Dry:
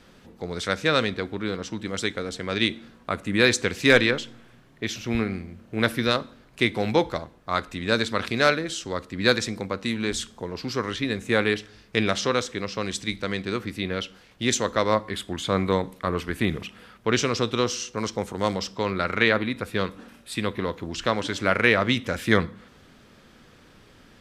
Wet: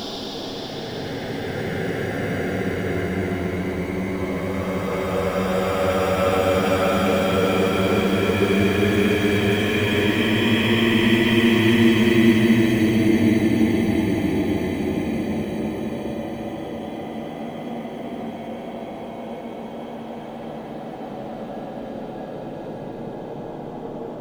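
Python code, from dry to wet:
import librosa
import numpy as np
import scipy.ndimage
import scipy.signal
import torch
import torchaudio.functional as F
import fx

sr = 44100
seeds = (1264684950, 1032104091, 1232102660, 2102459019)

p1 = fx.freq_compress(x, sr, knee_hz=2500.0, ratio=1.5)
p2 = fx.env_lowpass_down(p1, sr, base_hz=700.0, full_db=-17.0)
p3 = fx.sample_hold(p2, sr, seeds[0], rate_hz=2100.0, jitter_pct=0)
p4 = p2 + F.gain(torch.from_numpy(p3), -6.0).numpy()
p5 = fx.dmg_noise_band(p4, sr, seeds[1], low_hz=150.0, high_hz=760.0, level_db=-38.0)
p6 = fx.paulstretch(p5, sr, seeds[2], factor=42.0, window_s=0.1, from_s=2.35)
y = F.gain(torch.from_numpy(p6), 4.5).numpy()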